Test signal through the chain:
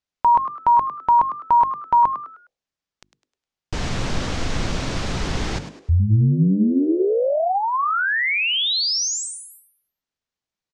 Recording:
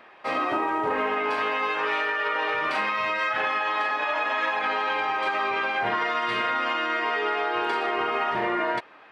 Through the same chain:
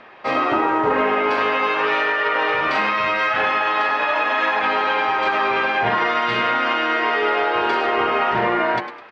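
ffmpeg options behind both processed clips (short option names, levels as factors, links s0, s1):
-filter_complex "[0:a]lowpass=f=6600:w=0.5412,lowpass=f=6600:w=1.3066,lowshelf=f=270:g=7.5,bandreject=f=50:t=h:w=6,bandreject=f=100:t=h:w=6,bandreject=f=150:t=h:w=6,bandreject=f=200:t=h:w=6,bandreject=f=250:t=h:w=6,bandreject=f=300:t=h:w=6,bandreject=f=350:t=h:w=6,asplit=5[s0][s1][s2][s3][s4];[s1]adelay=103,afreqshift=120,volume=0.282[s5];[s2]adelay=206,afreqshift=240,volume=0.0955[s6];[s3]adelay=309,afreqshift=360,volume=0.0327[s7];[s4]adelay=412,afreqshift=480,volume=0.0111[s8];[s0][s5][s6][s7][s8]amix=inputs=5:normalize=0,volume=1.88"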